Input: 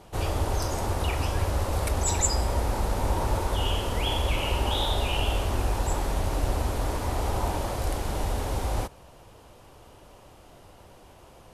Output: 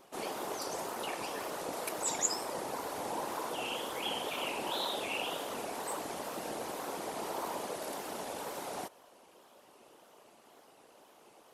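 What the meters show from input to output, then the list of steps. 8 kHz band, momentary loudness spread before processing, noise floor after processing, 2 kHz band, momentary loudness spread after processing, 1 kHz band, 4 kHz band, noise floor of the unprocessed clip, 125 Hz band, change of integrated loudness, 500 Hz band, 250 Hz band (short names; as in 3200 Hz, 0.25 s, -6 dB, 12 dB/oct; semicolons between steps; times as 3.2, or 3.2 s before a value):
-5.5 dB, 4 LU, -61 dBFS, -5.5 dB, 6 LU, -6.5 dB, -7.0 dB, -52 dBFS, -28.5 dB, -9.0 dB, -6.5 dB, -9.5 dB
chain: HPF 270 Hz 24 dB/oct; high shelf 10000 Hz +4 dB; wow and flutter 120 cents; whisperiser; gain -6.5 dB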